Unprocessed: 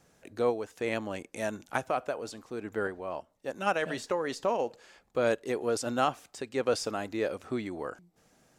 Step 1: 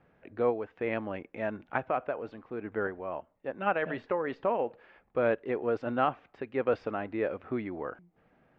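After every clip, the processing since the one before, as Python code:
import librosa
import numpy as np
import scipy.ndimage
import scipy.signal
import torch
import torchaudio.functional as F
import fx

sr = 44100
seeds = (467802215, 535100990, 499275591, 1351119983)

y = scipy.signal.sosfilt(scipy.signal.butter(4, 2500.0, 'lowpass', fs=sr, output='sos'), x)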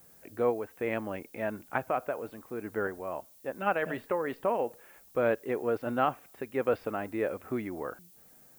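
y = fx.dmg_noise_colour(x, sr, seeds[0], colour='violet', level_db=-58.0)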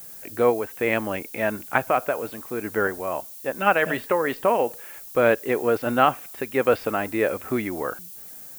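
y = fx.high_shelf(x, sr, hz=2100.0, db=9.5)
y = y * 10.0 ** (7.5 / 20.0)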